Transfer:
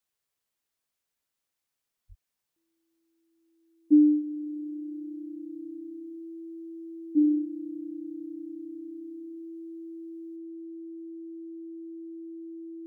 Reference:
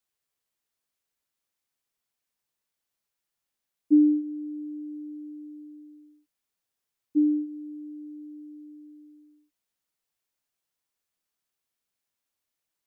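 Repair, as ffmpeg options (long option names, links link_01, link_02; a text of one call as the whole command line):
ffmpeg -i in.wav -filter_complex "[0:a]bandreject=frequency=330:width=30,asplit=3[link_01][link_02][link_03];[link_01]afade=type=out:start_time=2.08:duration=0.02[link_04];[link_02]highpass=frequency=140:width=0.5412,highpass=frequency=140:width=1.3066,afade=type=in:start_time=2.08:duration=0.02,afade=type=out:start_time=2.2:duration=0.02[link_05];[link_03]afade=type=in:start_time=2.2:duration=0.02[link_06];[link_04][link_05][link_06]amix=inputs=3:normalize=0,asetnsamples=nb_out_samples=441:pad=0,asendcmd='10.36 volume volume 7.5dB',volume=0dB" out.wav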